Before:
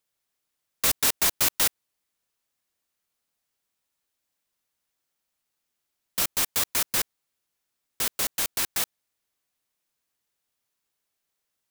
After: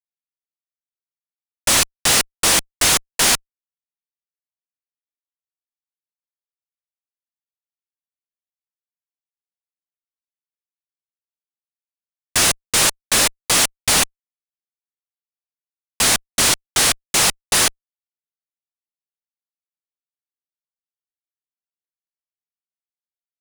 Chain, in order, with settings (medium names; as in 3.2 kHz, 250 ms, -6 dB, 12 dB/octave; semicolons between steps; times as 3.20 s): speed mistake 15 ips tape played at 7.5 ips; fuzz box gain 35 dB, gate -42 dBFS